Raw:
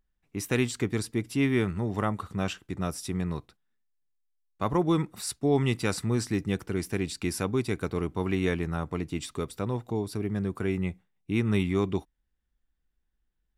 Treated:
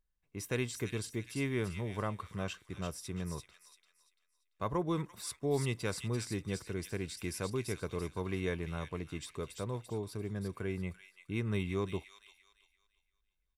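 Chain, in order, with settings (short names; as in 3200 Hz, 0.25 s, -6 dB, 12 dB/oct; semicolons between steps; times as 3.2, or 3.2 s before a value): comb 1.9 ms, depth 34%; thin delay 0.341 s, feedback 32%, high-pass 2600 Hz, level -4 dB; gain -8 dB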